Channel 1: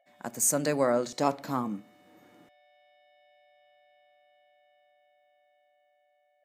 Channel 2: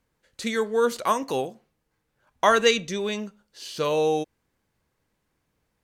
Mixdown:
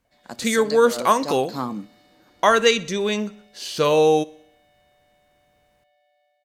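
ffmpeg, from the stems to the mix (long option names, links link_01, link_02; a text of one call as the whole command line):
ffmpeg -i stem1.wav -i stem2.wav -filter_complex "[0:a]equalizer=frequency=4400:width=2.2:gain=13.5,adelay=50,volume=-2dB[link_01];[1:a]volume=1dB,asplit=3[link_02][link_03][link_04];[link_03]volume=-22.5dB[link_05];[link_04]apad=whole_len=286507[link_06];[link_01][link_06]sidechaincompress=threshold=-35dB:ratio=8:attack=16:release=157[link_07];[link_05]aecho=0:1:62|124|186|248|310|372|434|496:1|0.55|0.303|0.166|0.0915|0.0503|0.0277|0.0152[link_08];[link_07][link_02][link_08]amix=inputs=3:normalize=0,dynaudnorm=framelen=250:gausssize=3:maxgain=5.5dB" out.wav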